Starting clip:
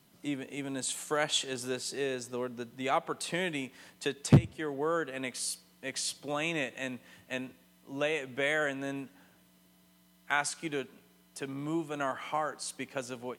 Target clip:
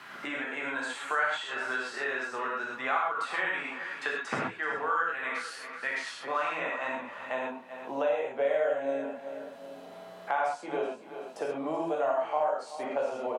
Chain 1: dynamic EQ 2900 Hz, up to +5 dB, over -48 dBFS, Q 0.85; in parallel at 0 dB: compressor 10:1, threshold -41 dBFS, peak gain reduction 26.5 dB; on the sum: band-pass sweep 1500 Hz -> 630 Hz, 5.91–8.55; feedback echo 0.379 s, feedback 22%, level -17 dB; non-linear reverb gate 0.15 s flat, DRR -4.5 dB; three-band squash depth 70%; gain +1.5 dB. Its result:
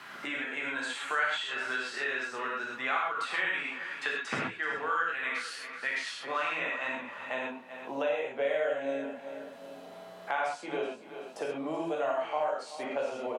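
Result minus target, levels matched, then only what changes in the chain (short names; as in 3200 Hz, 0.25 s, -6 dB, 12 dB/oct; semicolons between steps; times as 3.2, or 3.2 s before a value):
4000 Hz band +4.0 dB
change: dynamic EQ 840 Hz, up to +5 dB, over -48 dBFS, Q 0.85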